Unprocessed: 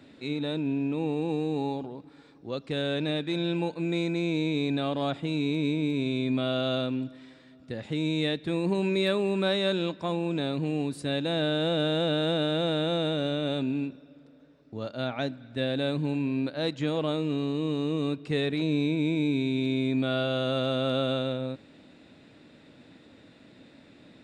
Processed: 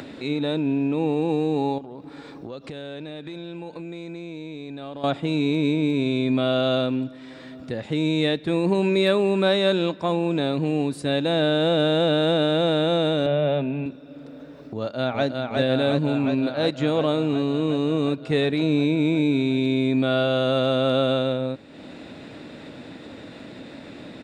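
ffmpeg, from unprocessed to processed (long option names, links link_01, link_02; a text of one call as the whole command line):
ffmpeg -i in.wav -filter_complex "[0:a]asettb=1/sr,asplit=3[link_01][link_02][link_03];[link_01]atrim=end=1.784[link_04];[link_02]atrim=start=1.78:end=5.04,asetpts=PTS-STARTPTS,afade=type=in:duration=0.004:curve=qsin,afade=type=out:start_time=3.256:duration=0.004:curve=qsin,acompressor=threshold=-41dB:ratio=5:attack=3.2:release=140:knee=1:detection=peak[link_05];[link_03]atrim=start=5.036[link_06];[link_04][link_05]acrossfade=duration=0.004:curve1=hsin:curve2=qsin[link_07];[link_07][link_06]acrossfade=duration=0.004:curve1=qsin:curve2=hsin,asettb=1/sr,asplit=3[link_08][link_09][link_10];[link_08]atrim=end=13.264[link_11];[link_09]atrim=start=13.26:end=13.86,asetpts=PTS-STARTPTS,afade=type=in:duration=0.004:curve=qsin,afade=type=out:start_time=0.596:duration=0.004:curve=qsin,highpass=150,equalizer=frequency=150:width_type=q:width=4:gain=8,equalizer=frequency=300:width_type=q:width=4:gain=-8,equalizer=frequency=630:width_type=q:width=4:gain=6,equalizer=frequency=1300:width_type=q:width=4:gain=-3,lowpass=frequency=3100:width=0.5412,lowpass=frequency=3100:width=1.3066[link_12];[link_10]atrim=start=13.856[link_13];[link_11][link_12]acrossfade=duration=0.004:curve1=hsin:curve2=qsin[link_14];[link_14][link_13]acrossfade=duration=0.004:curve1=qsin:curve2=hsin,asplit=2[link_15][link_16];[link_16]afade=type=in:start_time=14.78:duration=0.01,afade=type=out:start_time=15.26:duration=0.01,aecho=0:1:360|720|1080|1440|1800|2160|2520|2880|3240|3600|3960|4320:0.668344|0.534675|0.42774|0.342192|0.273754|0.219003|0.175202|0.140162|0.11213|0.0897036|0.0717629|0.0574103[link_17];[link_15][link_17]amix=inputs=2:normalize=0,acompressor=mode=upward:threshold=-36dB:ratio=2.5,equalizer=frequency=670:width=0.56:gain=3.5,volume=4dB" out.wav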